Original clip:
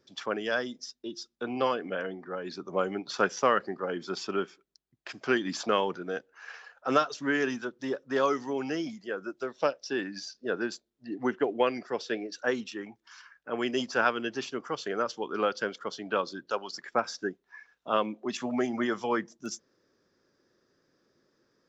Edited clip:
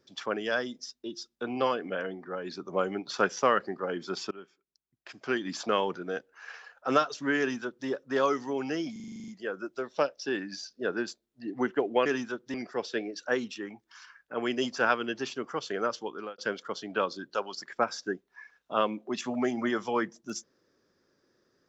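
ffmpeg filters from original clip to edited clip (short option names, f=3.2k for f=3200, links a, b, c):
-filter_complex "[0:a]asplit=14[a][b][c][d][e][f][g][h][i][j][k][l][m][n];[a]atrim=end=4.31,asetpts=PTS-STARTPTS,afade=t=out:st=4.306:d=0.004:c=hsin:silence=0.105925[o];[b]atrim=start=4.31:end=8.962,asetpts=PTS-STARTPTS,afade=t=in:d=1.61:silence=0.105925[p];[c]atrim=start=8.918:end=8.962[q];[d]atrim=start=8.918:end=8.962[r];[e]atrim=start=8.918:end=8.962[s];[f]atrim=start=8.918:end=8.962[t];[g]atrim=start=8.918:end=8.962[u];[h]atrim=start=8.918:end=8.962[v];[i]atrim=start=8.918:end=8.962[w];[j]atrim=start=8.918:end=8.962[x];[k]atrim=start=8.918:end=11.702[y];[l]atrim=start=7.388:end=7.872[z];[m]atrim=start=11.698:end=15.54,asetpts=PTS-STARTPTS,afade=t=out:st=3.442:d=0.4[aa];[n]atrim=start=15.54,asetpts=PTS-STARTPTS,afade=t=in:d=0.004:c=hsin[ab];[o][p]concat=n=2:v=0:a=1[ac];[ac][q]acrossfade=d=0.004:c1=hsin:c2=hsin[ad];[ad][r]acrossfade=d=0.004:c1=hsin:c2=hsin[ae];[ae][s]acrossfade=d=0.004:c1=hsin:c2=hsin[af];[af][t]acrossfade=d=0.004:c1=hsin:c2=hsin[ag];[ag][u]acrossfade=d=0.004:c1=hsin:c2=hsin[ah];[ah][v]acrossfade=d=0.004:c1=hsin:c2=hsin[ai];[ai][w]acrossfade=d=0.004:c1=hsin:c2=hsin[aj];[aj][x]acrossfade=d=0.004:c1=hsin:c2=hsin[ak];[ak][y]acrossfade=d=0.004:c1=hsin:c2=hsin[al];[al][z]acrossfade=d=0.004:c1=hsin:c2=hsin[am];[aa][ab]concat=n=2:v=0:a=1[an];[am][an]acrossfade=d=0.004:c1=hsin:c2=hsin"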